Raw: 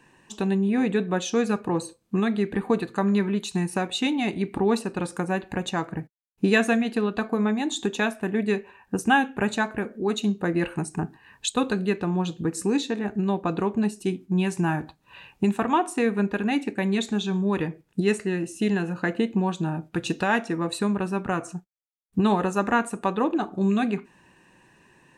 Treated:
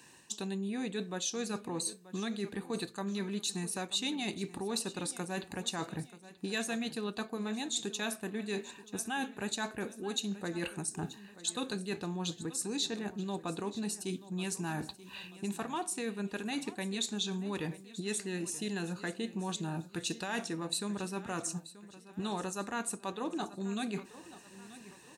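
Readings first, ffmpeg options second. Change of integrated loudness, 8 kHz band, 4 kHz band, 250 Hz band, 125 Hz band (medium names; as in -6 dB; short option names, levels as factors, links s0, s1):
-11.0 dB, +0.5 dB, -3.0 dB, -13.0 dB, -12.5 dB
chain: -af "bass=f=250:g=-1,treble=f=4000:g=14,areverse,acompressor=threshold=0.0282:ratio=5,areverse,highpass=54,equalizer=f=4100:w=1.9:g=5.5,aecho=1:1:932|1864|2796|3728:0.15|0.0658|0.029|0.0127,volume=0.668"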